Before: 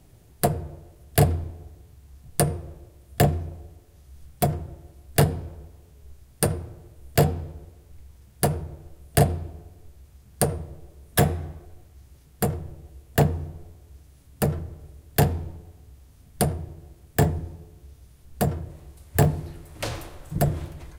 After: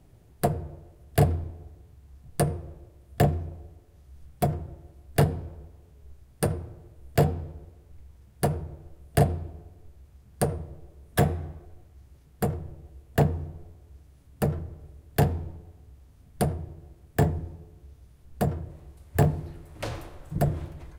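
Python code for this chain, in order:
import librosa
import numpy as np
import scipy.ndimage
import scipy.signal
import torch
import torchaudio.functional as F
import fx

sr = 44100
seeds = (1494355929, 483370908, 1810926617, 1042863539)

y = fx.high_shelf(x, sr, hz=2800.0, db=-7.5)
y = y * 10.0 ** (-2.0 / 20.0)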